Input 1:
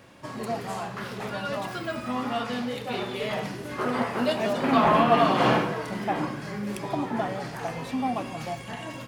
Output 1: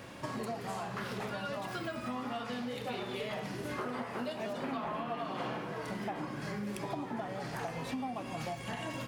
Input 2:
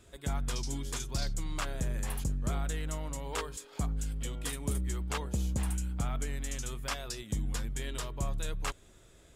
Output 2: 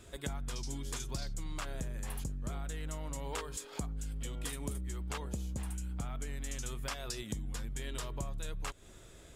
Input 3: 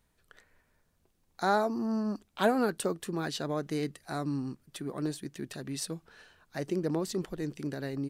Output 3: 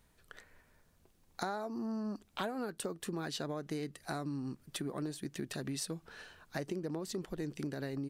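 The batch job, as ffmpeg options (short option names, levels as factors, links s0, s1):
-af "acompressor=threshold=0.0112:ratio=10,volume=1.58"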